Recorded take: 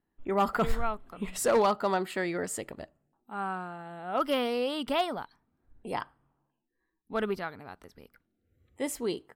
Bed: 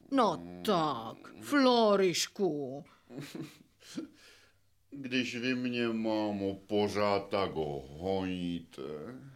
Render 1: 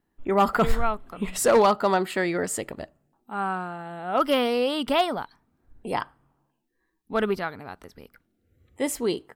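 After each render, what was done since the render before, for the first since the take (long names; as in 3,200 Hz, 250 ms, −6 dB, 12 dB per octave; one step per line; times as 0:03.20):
level +6 dB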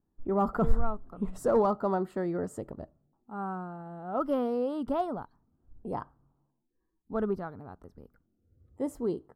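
drawn EQ curve 100 Hz 0 dB, 1,300 Hz −10 dB, 2,300 Hz −28 dB, 6,000 Hz −21 dB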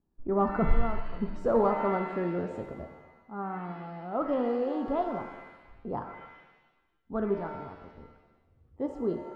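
high-frequency loss of the air 180 metres
reverb with rising layers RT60 1.1 s, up +7 semitones, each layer −8 dB, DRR 5.5 dB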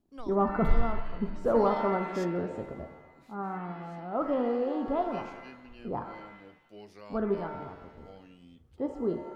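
mix in bed −19 dB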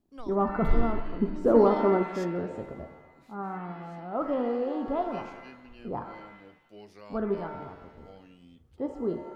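0:00.73–0:02.03: parametric band 310 Hz +14 dB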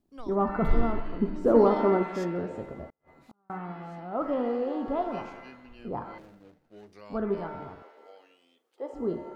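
0:02.87–0:03.50: gate with flip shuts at −40 dBFS, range −38 dB
0:06.18–0:06.93: running median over 41 samples
0:07.82–0:08.93: high-pass filter 410 Hz 24 dB per octave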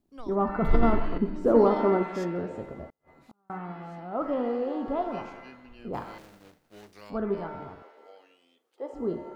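0:00.64–0:01.18: level that may fall only so fast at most 29 dB per second
0:05.93–0:07.09: compressing power law on the bin magnitudes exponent 0.68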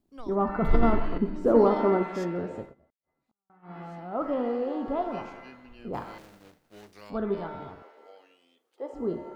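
0:02.59–0:03.78: duck −23.5 dB, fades 0.16 s
0:07.14–0:07.71: parametric band 3,600 Hz +11.5 dB 0.23 octaves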